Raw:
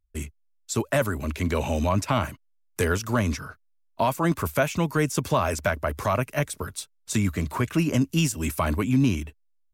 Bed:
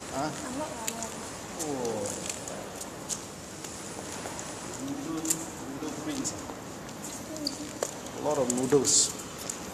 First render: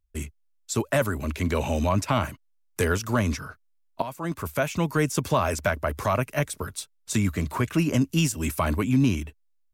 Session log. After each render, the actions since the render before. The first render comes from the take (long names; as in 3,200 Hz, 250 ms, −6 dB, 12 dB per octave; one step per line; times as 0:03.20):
0:04.02–0:04.89: fade in, from −13.5 dB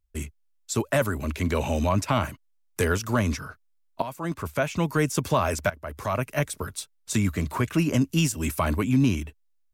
0:04.34–0:04.78: high-shelf EQ 10,000 Hz −9.5 dB
0:05.70–0:06.34: fade in linear, from −17 dB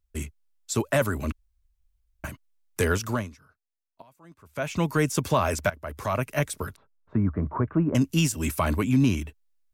0:01.32–0:02.24: fill with room tone
0:03.07–0:04.72: duck −21 dB, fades 0.23 s
0:06.76–0:07.95: low-pass filter 1,300 Hz 24 dB per octave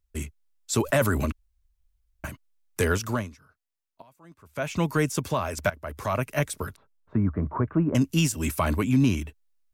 0:00.73–0:01.26: envelope flattener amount 50%
0:04.93–0:05.57: fade out, to −7 dB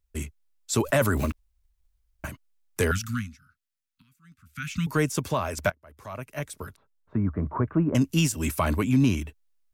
0:01.17–0:02.26: one scale factor per block 5 bits
0:02.91–0:04.87: Chebyshev band-stop filter 250–1,300 Hz, order 4
0:05.72–0:07.59: fade in, from −20.5 dB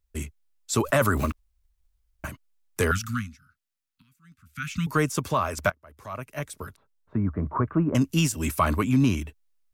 dynamic equaliser 1,200 Hz, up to +7 dB, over −45 dBFS, Q 3.1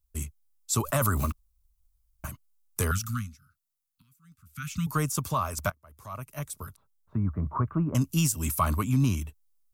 drawn EQ curve 140 Hz 0 dB, 310 Hz −8 dB, 470 Hz −9 dB, 670 Hz −6 dB, 1,200 Hz −2 dB, 1,700 Hz −10 dB, 13,000 Hz +6 dB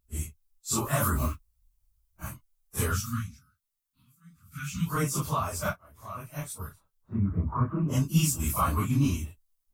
random phases in long frames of 100 ms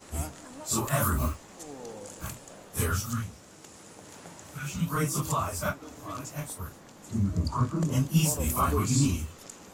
mix in bed −10 dB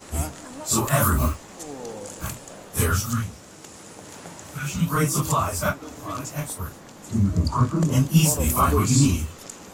level +6.5 dB